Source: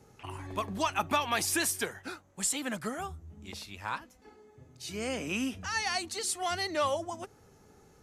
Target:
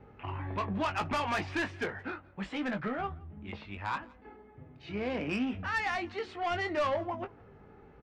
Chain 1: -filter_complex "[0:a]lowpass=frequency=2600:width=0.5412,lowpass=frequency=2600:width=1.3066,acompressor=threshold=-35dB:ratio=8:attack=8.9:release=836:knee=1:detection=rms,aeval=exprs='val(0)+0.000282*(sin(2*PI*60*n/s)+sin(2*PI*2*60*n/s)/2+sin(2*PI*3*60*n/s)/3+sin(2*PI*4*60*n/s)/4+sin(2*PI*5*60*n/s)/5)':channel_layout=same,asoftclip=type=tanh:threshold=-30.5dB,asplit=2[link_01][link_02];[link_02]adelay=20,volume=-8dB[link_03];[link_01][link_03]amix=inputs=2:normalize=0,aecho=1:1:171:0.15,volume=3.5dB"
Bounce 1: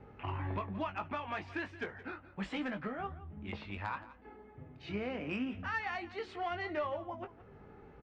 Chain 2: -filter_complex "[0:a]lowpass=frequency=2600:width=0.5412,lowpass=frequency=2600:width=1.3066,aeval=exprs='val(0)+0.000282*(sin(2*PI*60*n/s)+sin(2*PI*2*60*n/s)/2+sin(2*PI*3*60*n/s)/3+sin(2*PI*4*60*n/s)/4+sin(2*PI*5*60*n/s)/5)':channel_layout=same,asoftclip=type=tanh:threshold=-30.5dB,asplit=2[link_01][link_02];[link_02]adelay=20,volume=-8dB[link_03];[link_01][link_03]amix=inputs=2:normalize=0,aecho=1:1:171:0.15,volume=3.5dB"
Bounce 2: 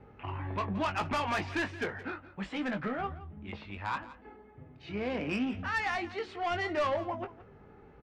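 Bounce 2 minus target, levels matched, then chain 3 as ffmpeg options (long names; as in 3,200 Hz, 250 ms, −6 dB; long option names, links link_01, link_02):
echo-to-direct +9 dB
-filter_complex "[0:a]lowpass=frequency=2600:width=0.5412,lowpass=frequency=2600:width=1.3066,aeval=exprs='val(0)+0.000282*(sin(2*PI*60*n/s)+sin(2*PI*2*60*n/s)/2+sin(2*PI*3*60*n/s)/3+sin(2*PI*4*60*n/s)/4+sin(2*PI*5*60*n/s)/5)':channel_layout=same,asoftclip=type=tanh:threshold=-30.5dB,asplit=2[link_01][link_02];[link_02]adelay=20,volume=-8dB[link_03];[link_01][link_03]amix=inputs=2:normalize=0,aecho=1:1:171:0.0531,volume=3.5dB"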